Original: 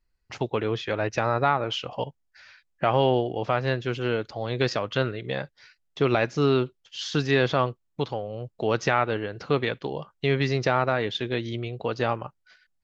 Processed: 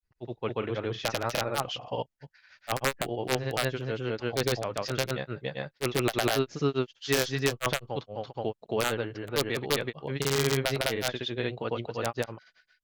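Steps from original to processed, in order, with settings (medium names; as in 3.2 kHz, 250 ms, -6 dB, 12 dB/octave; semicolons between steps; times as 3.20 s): integer overflow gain 11 dB; granulator 135 ms, grains 15 per s, spray 253 ms; trim -3 dB; Opus 96 kbps 48 kHz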